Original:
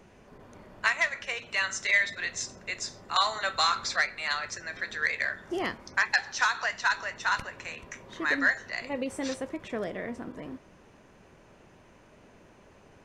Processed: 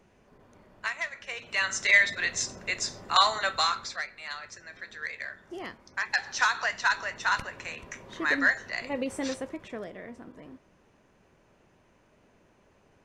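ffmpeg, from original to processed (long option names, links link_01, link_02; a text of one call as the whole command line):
ffmpeg -i in.wav -af "volume=13dB,afade=type=in:start_time=1.2:duration=0.72:silence=0.298538,afade=type=out:start_time=3.23:duration=0.73:silence=0.251189,afade=type=in:start_time=5.93:duration=0.42:silence=0.354813,afade=type=out:start_time=9.22:duration=0.68:silence=0.398107" out.wav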